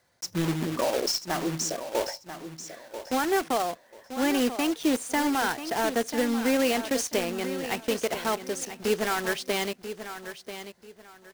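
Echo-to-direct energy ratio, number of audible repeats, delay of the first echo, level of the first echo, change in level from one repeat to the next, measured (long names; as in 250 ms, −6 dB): −10.5 dB, 2, 989 ms, −11.0 dB, −12.0 dB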